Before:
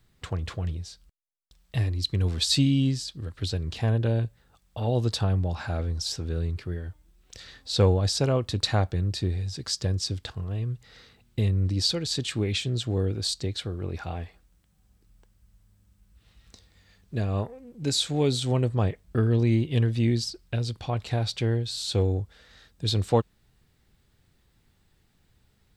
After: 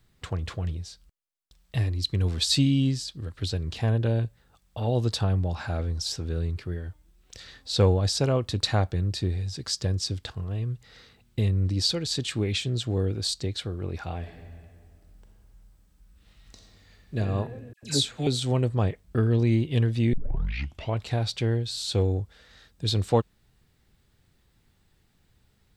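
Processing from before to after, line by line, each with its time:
14.18–17.19 s: reverb throw, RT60 2.1 s, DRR 1 dB
17.73–18.27 s: phase dispersion lows, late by 97 ms, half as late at 1.5 kHz
20.13 s: tape start 0.85 s

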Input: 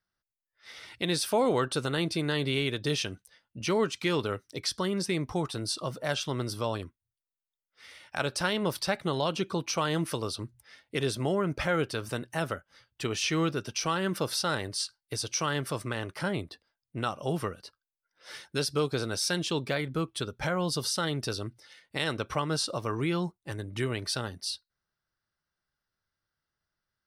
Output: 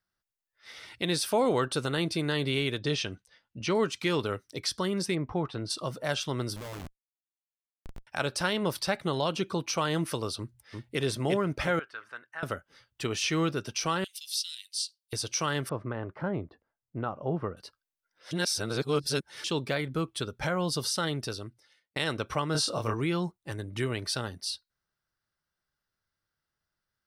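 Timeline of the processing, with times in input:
2.79–3.75 s: low-pass 6.2 kHz
5.14–5.69 s: low-pass 1.6 kHz -> 3.4 kHz
6.56–8.07 s: Schmitt trigger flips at -41 dBFS
10.37–11.01 s: echo throw 350 ms, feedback 35%, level -3 dB
11.79–12.43 s: band-pass filter 1.5 kHz, Q 2.9
14.04–15.13 s: steep high-pass 2.9 kHz
15.69–17.57 s: low-pass 1.2 kHz
18.31–19.44 s: reverse
21.07–21.96 s: fade out
22.52–22.94 s: doubling 27 ms -2.5 dB

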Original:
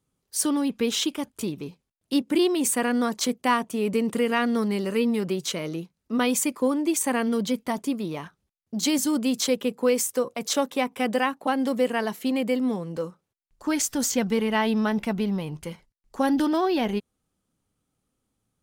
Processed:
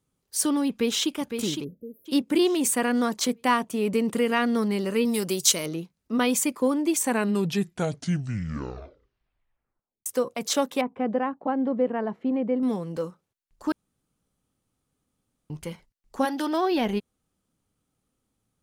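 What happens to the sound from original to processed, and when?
0.70–1.12 s: echo throw 510 ms, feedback 40%, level -7 dB
1.64–2.06 s: spectral selection erased 650–11000 Hz
5.05–5.66 s: tone controls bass -3 dB, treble +15 dB
6.95 s: tape stop 3.11 s
10.81–12.63 s: Bessel low-pass 880 Hz
13.72–15.50 s: room tone
16.24–16.70 s: high-pass 550 Hz -> 250 Hz

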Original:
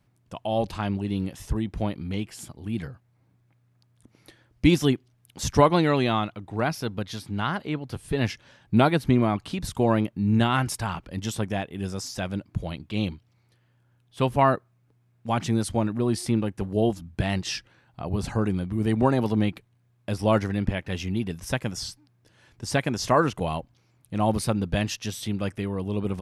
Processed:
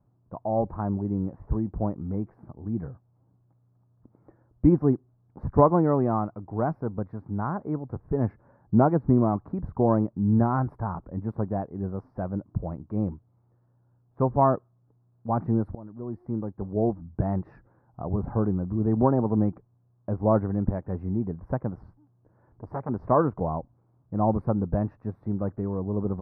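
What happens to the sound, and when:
15.75–17.12 s: fade in, from -22 dB
21.80–22.89 s: transformer saturation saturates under 2.2 kHz
whole clip: inverse Chebyshev low-pass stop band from 2.9 kHz, stop band 50 dB

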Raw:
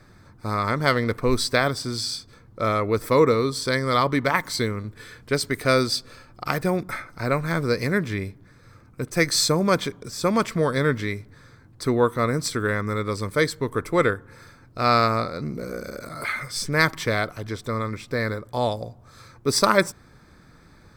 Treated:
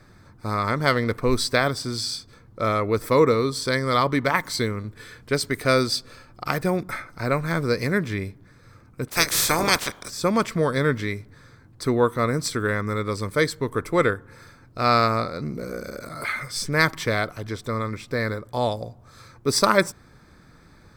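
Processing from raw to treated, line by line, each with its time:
9.08–10.09 s: spectral peaks clipped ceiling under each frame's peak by 26 dB

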